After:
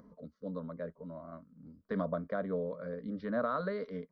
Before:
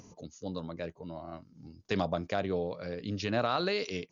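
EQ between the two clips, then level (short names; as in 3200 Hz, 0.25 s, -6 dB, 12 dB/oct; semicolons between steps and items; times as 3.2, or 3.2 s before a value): Gaussian blur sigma 3.3 samples; fixed phaser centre 530 Hz, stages 8; 0.0 dB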